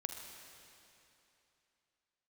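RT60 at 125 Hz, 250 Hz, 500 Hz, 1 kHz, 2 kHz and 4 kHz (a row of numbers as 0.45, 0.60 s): 2.9, 3.0, 2.9, 3.0, 2.9, 2.8 s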